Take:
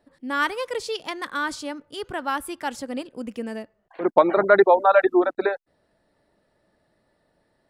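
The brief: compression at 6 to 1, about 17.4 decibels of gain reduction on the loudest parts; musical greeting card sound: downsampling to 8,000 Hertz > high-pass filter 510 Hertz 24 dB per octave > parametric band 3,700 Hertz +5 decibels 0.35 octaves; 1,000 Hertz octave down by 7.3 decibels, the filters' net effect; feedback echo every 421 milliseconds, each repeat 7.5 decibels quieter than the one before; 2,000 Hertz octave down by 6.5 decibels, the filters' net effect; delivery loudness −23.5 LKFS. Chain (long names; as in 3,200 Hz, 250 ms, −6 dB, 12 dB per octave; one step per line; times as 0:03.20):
parametric band 1,000 Hz −8.5 dB
parametric band 2,000 Hz −5 dB
downward compressor 6 to 1, threshold −33 dBFS
repeating echo 421 ms, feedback 42%, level −7.5 dB
downsampling to 8,000 Hz
high-pass filter 510 Hz 24 dB per octave
parametric band 3,700 Hz +5 dB 0.35 octaves
level +17 dB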